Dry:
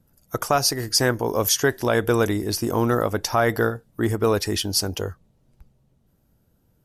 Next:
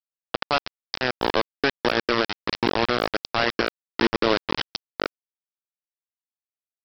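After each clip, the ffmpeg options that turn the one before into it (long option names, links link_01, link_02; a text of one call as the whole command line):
ffmpeg -i in.wav -af "highpass=frequency=210:width=0.5412,highpass=frequency=210:width=1.3066,alimiter=limit=-17dB:level=0:latency=1:release=494,aresample=11025,acrusher=bits=3:mix=0:aa=0.000001,aresample=44100,volume=5dB" out.wav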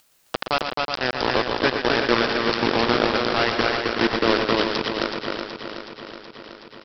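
ffmpeg -i in.wav -filter_complex "[0:a]asplit=2[link_01][link_02];[link_02]aecho=0:1:373|746|1119|1492|1865|2238|2611|2984:0.447|0.264|0.155|0.0917|0.0541|0.0319|0.0188|0.0111[link_03];[link_01][link_03]amix=inputs=2:normalize=0,acompressor=mode=upward:threshold=-34dB:ratio=2.5,asplit=2[link_04][link_05];[link_05]aecho=0:1:119.5|265.3:0.398|0.708[link_06];[link_04][link_06]amix=inputs=2:normalize=0" out.wav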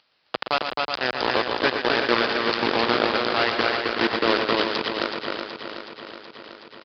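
ffmpeg -i in.wav -af "highpass=43,lowshelf=frequency=220:gain=-8.5,aresample=11025,aresample=44100" out.wav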